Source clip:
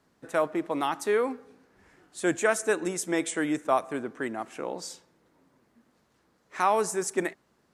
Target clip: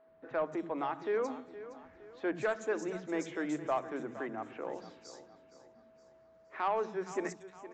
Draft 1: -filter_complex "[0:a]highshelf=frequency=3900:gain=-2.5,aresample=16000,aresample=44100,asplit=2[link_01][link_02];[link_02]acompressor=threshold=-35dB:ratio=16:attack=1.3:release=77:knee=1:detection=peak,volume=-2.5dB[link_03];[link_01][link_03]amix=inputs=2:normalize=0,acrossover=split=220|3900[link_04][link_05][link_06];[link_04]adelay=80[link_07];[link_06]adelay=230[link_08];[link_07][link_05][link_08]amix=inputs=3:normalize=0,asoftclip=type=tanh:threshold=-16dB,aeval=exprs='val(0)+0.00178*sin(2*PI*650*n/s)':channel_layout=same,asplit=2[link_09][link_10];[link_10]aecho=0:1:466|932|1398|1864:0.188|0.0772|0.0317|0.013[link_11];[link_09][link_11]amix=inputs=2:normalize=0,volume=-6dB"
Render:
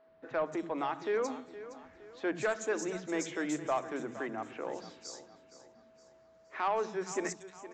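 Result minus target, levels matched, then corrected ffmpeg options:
8,000 Hz band +8.5 dB; downward compressor: peak gain reduction −5.5 dB
-filter_complex "[0:a]highshelf=frequency=3900:gain=-14.5,aresample=16000,aresample=44100,asplit=2[link_01][link_02];[link_02]acompressor=threshold=-42dB:ratio=16:attack=1.3:release=77:knee=1:detection=peak,volume=-2.5dB[link_03];[link_01][link_03]amix=inputs=2:normalize=0,acrossover=split=220|3900[link_04][link_05][link_06];[link_04]adelay=80[link_07];[link_06]adelay=230[link_08];[link_07][link_05][link_08]amix=inputs=3:normalize=0,asoftclip=type=tanh:threshold=-16dB,aeval=exprs='val(0)+0.00178*sin(2*PI*650*n/s)':channel_layout=same,asplit=2[link_09][link_10];[link_10]aecho=0:1:466|932|1398|1864:0.188|0.0772|0.0317|0.013[link_11];[link_09][link_11]amix=inputs=2:normalize=0,volume=-6dB"

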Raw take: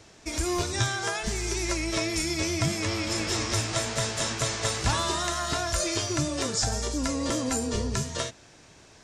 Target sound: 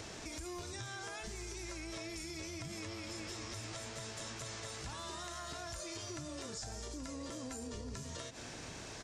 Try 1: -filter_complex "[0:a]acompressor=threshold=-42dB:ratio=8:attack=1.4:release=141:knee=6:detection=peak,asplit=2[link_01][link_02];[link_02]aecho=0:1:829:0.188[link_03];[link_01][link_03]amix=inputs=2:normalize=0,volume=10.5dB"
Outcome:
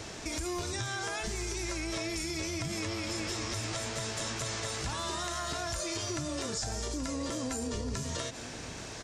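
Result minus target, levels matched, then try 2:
downward compressor: peak gain reduction −9 dB
-filter_complex "[0:a]acompressor=threshold=-52.5dB:ratio=8:attack=1.4:release=141:knee=6:detection=peak,asplit=2[link_01][link_02];[link_02]aecho=0:1:829:0.188[link_03];[link_01][link_03]amix=inputs=2:normalize=0,volume=10.5dB"

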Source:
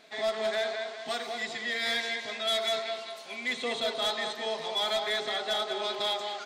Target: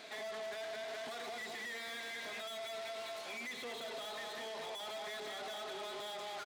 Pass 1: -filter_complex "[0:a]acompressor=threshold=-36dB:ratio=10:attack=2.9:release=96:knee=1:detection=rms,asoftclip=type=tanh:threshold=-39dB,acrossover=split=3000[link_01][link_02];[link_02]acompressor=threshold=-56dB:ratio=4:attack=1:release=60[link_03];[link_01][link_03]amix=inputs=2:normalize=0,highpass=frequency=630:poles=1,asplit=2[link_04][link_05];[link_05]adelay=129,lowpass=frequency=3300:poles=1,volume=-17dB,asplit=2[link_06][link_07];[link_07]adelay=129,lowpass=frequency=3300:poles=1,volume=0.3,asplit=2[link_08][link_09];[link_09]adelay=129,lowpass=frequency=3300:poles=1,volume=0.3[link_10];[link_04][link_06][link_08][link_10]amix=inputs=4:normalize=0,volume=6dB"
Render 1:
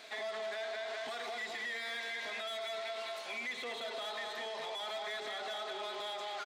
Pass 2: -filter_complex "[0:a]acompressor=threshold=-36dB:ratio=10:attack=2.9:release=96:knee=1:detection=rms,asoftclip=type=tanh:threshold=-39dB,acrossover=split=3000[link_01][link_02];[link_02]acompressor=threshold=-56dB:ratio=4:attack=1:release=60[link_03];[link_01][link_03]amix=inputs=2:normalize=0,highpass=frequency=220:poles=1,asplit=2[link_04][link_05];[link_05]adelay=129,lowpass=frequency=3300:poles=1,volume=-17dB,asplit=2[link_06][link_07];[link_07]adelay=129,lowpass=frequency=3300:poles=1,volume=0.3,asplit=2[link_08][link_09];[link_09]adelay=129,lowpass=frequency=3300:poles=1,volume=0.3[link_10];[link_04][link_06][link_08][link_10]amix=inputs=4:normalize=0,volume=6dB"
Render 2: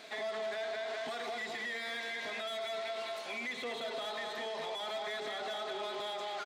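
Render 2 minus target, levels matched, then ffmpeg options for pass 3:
soft clipping: distortion −6 dB
-filter_complex "[0:a]acompressor=threshold=-36dB:ratio=10:attack=2.9:release=96:knee=1:detection=rms,asoftclip=type=tanh:threshold=-47dB,acrossover=split=3000[link_01][link_02];[link_02]acompressor=threshold=-56dB:ratio=4:attack=1:release=60[link_03];[link_01][link_03]amix=inputs=2:normalize=0,highpass=frequency=220:poles=1,asplit=2[link_04][link_05];[link_05]adelay=129,lowpass=frequency=3300:poles=1,volume=-17dB,asplit=2[link_06][link_07];[link_07]adelay=129,lowpass=frequency=3300:poles=1,volume=0.3,asplit=2[link_08][link_09];[link_09]adelay=129,lowpass=frequency=3300:poles=1,volume=0.3[link_10];[link_04][link_06][link_08][link_10]amix=inputs=4:normalize=0,volume=6dB"

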